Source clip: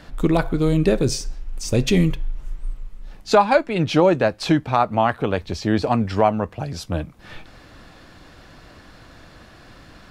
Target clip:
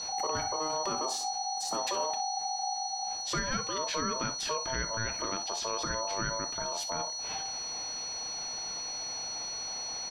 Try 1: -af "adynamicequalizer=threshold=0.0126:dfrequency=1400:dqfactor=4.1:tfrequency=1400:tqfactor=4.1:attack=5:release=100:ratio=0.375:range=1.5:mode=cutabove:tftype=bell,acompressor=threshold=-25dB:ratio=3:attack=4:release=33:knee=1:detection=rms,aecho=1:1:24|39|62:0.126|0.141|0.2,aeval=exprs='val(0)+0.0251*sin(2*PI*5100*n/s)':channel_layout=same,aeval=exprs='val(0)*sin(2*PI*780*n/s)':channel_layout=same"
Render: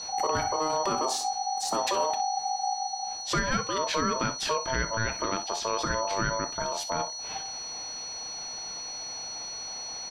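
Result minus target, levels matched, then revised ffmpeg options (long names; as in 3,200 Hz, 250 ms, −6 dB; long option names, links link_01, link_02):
downward compressor: peak gain reduction −5.5 dB
-af "adynamicequalizer=threshold=0.0126:dfrequency=1400:dqfactor=4.1:tfrequency=1400:tqfactor=4.1:attack=5:release=100:ratio=0.375:range=1.5:mode=cutabove:tftype=bell,acompressor=threshold=-33.5dB:ratio=3:attack=4:release=33:knee=1:detection=rms,aecho=1:1:24|39|62:0.126|0.141|0.2,aeval=exprs='val(0)+0.0251*sin(2*PI*5100*n/s)':channel_layout=same,aeval=exprs='val(0)*sin(2*PI*780*n/s)':channel_layout=same"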